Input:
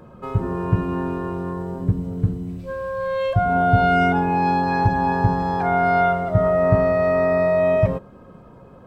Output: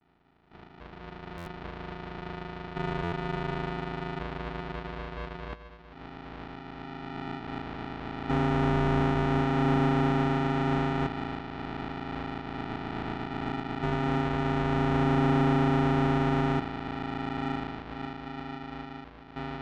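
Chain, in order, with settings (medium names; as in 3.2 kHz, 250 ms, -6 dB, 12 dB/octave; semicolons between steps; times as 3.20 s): simulated room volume 220 m³, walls hard, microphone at 0.87 m; vocoder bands 8, square 125 Hz; LFO band-pass square 0.4 Hz 950–2500 Hz; sample-and-hold 37×; peaking EQ 1.2 kHz -3 dB 0.77 oct; wide varispeed 0.452×; low-pass 4.2 kHz 24 dB/octave; overdrive pedal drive 21 dB, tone 1.5 kHz, clips at -12 dBFS; buffer glitch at 1.37/3.03 s, samples 512, times 7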